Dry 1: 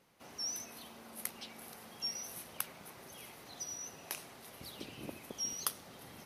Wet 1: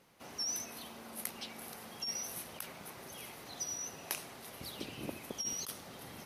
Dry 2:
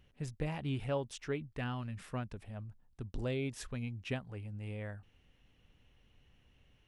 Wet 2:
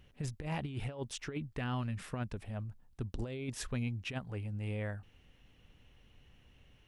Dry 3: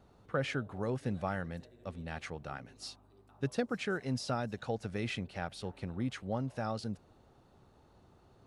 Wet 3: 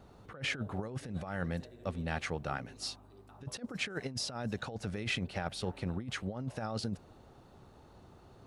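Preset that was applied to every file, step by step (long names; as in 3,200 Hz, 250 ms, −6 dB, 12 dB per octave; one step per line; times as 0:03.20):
compressor whose output falls as the input rises −38 dBFS, ratio −0.5
level +2.5 dB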